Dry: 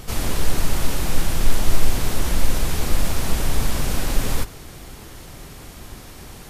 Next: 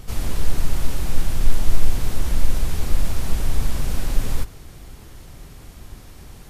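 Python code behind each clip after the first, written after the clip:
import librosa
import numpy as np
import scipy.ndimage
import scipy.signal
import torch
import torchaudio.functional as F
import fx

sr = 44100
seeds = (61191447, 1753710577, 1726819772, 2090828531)

y = fx.low_shelf(x, sr, hz=140.0, db=8.0)
y = F.gain(torch.from_numpy(y), -6.5).numpy()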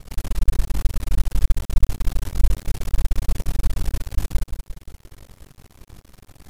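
y = x * np.sin(2.0 * np.pi * 23.0 * np.arange(len(x)) / sr)
y = fx.echo_feedback(y, sr, ms=175, feedback_pct=46, wet_db=-8.5)
y = np.maximum(y, 0.0)
y = F.gain(torch.from_numpy(y), 1.0).numpy()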